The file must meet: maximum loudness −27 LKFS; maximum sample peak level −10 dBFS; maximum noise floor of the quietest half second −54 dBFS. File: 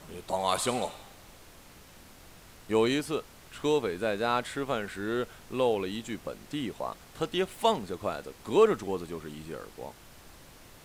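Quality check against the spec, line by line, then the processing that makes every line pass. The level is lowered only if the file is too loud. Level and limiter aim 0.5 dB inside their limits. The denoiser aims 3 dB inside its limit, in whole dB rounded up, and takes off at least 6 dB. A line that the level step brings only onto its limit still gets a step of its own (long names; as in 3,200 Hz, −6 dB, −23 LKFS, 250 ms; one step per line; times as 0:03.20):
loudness −30.5 LKFS: in spec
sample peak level −11.0 dBFS: in spec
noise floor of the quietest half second −52 dBFS: out of spec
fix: broadband denoise 6 dB, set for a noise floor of −52 dBFS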